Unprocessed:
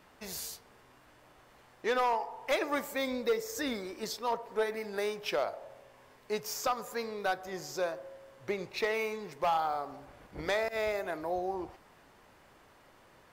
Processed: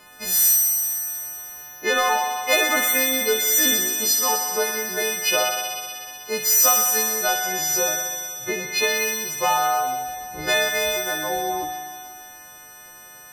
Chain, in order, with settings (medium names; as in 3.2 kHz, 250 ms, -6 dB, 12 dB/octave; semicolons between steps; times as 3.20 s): partials quantised in pitch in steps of 3 st; feedback echo behind a high-pass 62 ms, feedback 85%, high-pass 1.8 kHz, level -4 dB; spring tank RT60 1.9 s, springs 39 ms, chirp 40 ms, DRR 7 dB; trim +7 dB